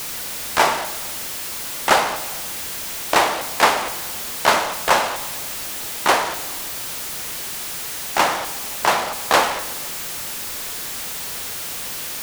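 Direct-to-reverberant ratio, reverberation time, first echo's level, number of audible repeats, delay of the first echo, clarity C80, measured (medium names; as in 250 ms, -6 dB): 11.0 dB, 1.5 s, no echo, no echo, no echo, 14.5 dB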